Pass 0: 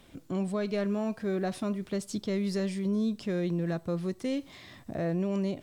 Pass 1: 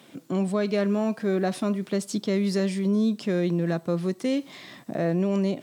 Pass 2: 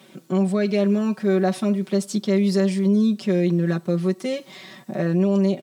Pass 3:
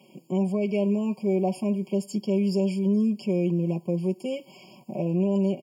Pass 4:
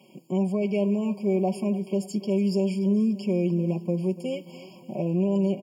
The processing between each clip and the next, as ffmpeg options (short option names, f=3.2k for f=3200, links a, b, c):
-af "highpass=f=150:w=0.5412,highpass=f=150:w=1.3066,volume=6dB"
-af "aecho=1:1:5.3:0.88"
-af "afftfilt=real='re*eq(mod(floor(b*sr/1024/1100),2),0)':imag='im*eq(mod(floor(b*sr/1024/1100),2),0)':win_size=1024:overlap=0.75,volume=-4.5dB"
-af "aecho=1:1:290|580|870|1160|1450:0.141|0.0735|0.0382|0.0199|0.0103"